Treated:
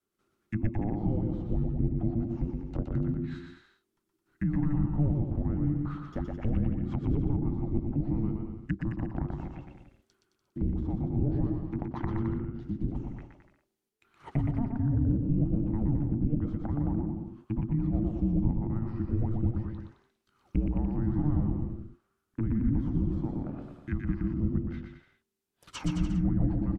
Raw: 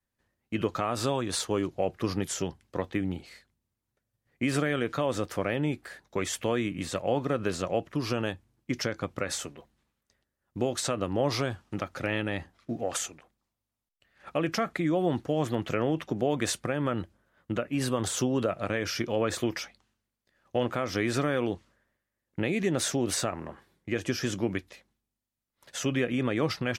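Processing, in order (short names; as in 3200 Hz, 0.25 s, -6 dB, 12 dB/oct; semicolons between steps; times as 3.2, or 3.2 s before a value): frequency shift -440 Hz; vibrato 5 Hz 12 cents; treble ducked by the level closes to 410 Hz, closed at -28.5 dBFS; on a send: bouncing-ball echo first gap 0.12 s, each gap 0.8×, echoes 5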